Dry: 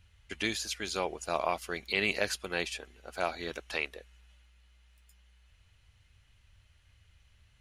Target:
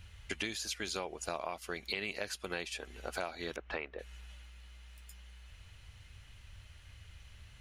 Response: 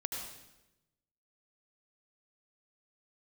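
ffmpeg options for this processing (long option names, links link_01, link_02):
-filter_complex "[0:a]asettb=1/sr,asplit=3[link_01][link_02][link_03];[link_01]atrim=end=3.564[link_04];[link_02]atrim=start=3.56:end=3.99,asetpts=PTS-STARTPTS,afade=type=in:duration=0.004:curve=qsin,afade=type=out:start_time=0.426:duration=0.004:curve=qsin,lowpass=1800[link_05];[link_03]atrim=start=3.986[link_06];[link_04][link_05]acrossfade=duration=0.004:curve1=hsin:curve2=qsin[link_07];[link_07][link_06]acrossfade=duration=0.004:curve1=qsin:curve2=hsin,acompressor=threshold=-45dB:ratio=6,volume=9dB"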